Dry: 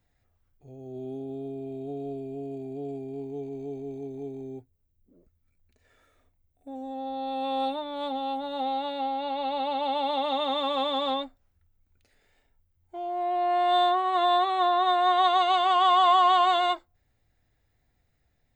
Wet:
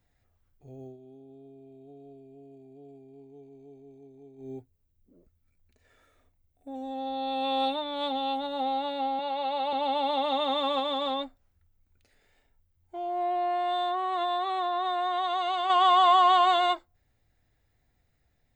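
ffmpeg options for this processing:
ffmpeg -i in.wav -filter_complex "[0:a]asettb=1/sr,asplit=3[link_01][link_02][link_03];[link_01]atrim=end=6.744[link_04];[link_02]atrim=start=6.74:end=8.47,asetpts=PTS-STARTPTS,afade=type=in:duration=0.004:curve=qsin,afade=type=out:start_time=1.726:duration=0.004:curve=qsin,equalizer=frequency=3300:width_type=o:width=1.8:gain=6[link_05];[link_03]atrim=start=8.466[link_06];[link_04][link_05]acrossfade=duration=0.004:curve1=hsin:curve2=qsin[link_07];[link_07][link_06]acrossfade=duration=0.004:curve1=qsin:curve2=hsin,asettb=1/sr,asplit=3[link_08][link_09][link_10];[link_08]atrim=end=9.194[link_11];[link_09]atrim=start=9.19:end=9.73,asetpts=PTS-STARTPTS,afade=type=in:duration=0.004:curve=qsin,afade=type=out:start_time=0.536:duration=0.004:curve=qsin,highpass=350[link_12];[link_10]atrim=start=9.726[link_13];[link_11][link_12]acrossfade=duration=0.004:curve1=hsin:curve2=qsin[link_14];[link_14][link_13]acrossfade=duration=0.004:curve1=qsin:curve2=hsin,asettb=1/sr,asplit=3[link_15][link_16][link_17];[link_15]atrim=end=10.794[link_18];[link_16]atrim=start=10.79:end=15.7,asetpts=PTS-STARTPTS,afade=type=in:duration=0.004:curve=qsin,afade=type=out:start_time=4.906:duration=0.004:curve=qsin,acompressor=threshold=-25dB:ratio=6:attack=3.2:release=140:knee=1:detection=peak[link_19];[link_17]atrim=start=15.696[link_20];[link_18][link_19]acrossfade=duration=0.004:curve1=hsin:curve2=qsin[link_21];[link_21][link_20]acrossfade=duration=0.004:curve1=qsin:curve2=hsin,asplit=3[link_22][link_23][link_24];[link_22]atrim=end=0.97,asetpts=PTS-STARTPTS,afade=type=out:start_time=0.83:duration=0.14:silence=0.188365[link_25];[link_23]atrim=start=0.97:end=4.37,asetpts=PTS-STARTPTS,volume=-14.5dB[link_26];[link_24]atrim=start=4.37,asetpts=PTS-STARTPTS,afade=type=in:duration=0.14:silence=0.188365[link_27];[link_25][link_26][link_27]concat=n=3:v=0:a=1" out.wav

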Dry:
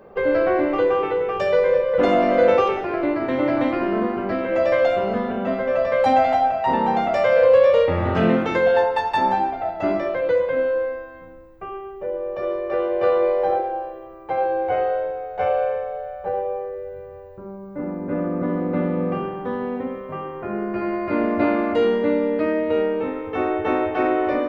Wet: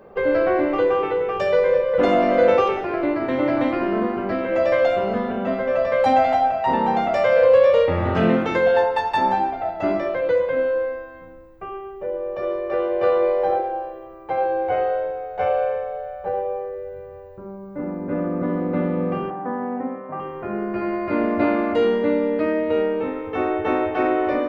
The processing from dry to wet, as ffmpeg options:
ffmpeg -i in.wav -filter_complex "[0:a]asettb=1/sr,asplit=3[link_01][link_02][link_03];[link_01]atrim=end=19.304[link_04];[link_02]atrim=start=19.3:end=20.2,asetpts=PTS-STARTPTS,afade=type=in:duration=0.004:curve=qsin,afade=type=out:start_time=0.896:duration=0.004:curve=qsin,highpass=170,equalizer=frequency=280:width_type=q:width=4:gain=4,equalizer=frequency=420:width_type=q:width=4:gain=-8,equalizer=frequency=750:width_type=q:width=4:gain=7,lowpass=frequency=2000:width=0.5412,lowpass=frequency=2000:width=1.3066[link_05];[link_03]atrim=start=20.196[link_06];[link_04][link_05]acrossfade=duration=0.004:curve1=hsin:curve2=qsin[link_07];[link_07][link_06]acrossfade=duration=0.004:curve1=qsin:curve2=hsin" out.wav

